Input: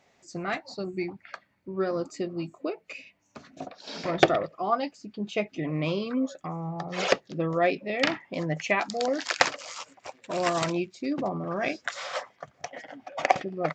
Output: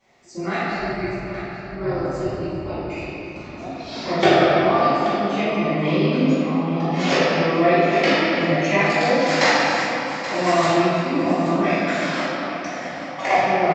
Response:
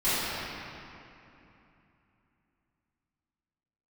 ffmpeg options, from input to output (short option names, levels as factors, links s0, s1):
-filter_complex "[0:a]asettb=1/sr,asplit=3[s0][s1][s2];[s0]atrim=end=0.684[s3];[s1]atrim=start=0.68:end=2.86,asetpts=PTS-STARTPTS,afade=t=in:d=0.004:c=qsin,afade=t=out:st=2.176:d=0.004:c=qsin,tremolo=f=240:d=0.947[s4];[s2]atrim=start=2.856[s5];[s3][s4]acrossfade=d=0.004:c1=hsin:c2=qsin[s6];[s6][s5]acrossfade=d=0.004:c1=qsin:c2=hsin,aecho=1:1:829:0.237[s7];[1:a]atrim=start_sample=2205[s8];[s7][s8]afir=irnorm=-1:irlink=0,volume=0.531"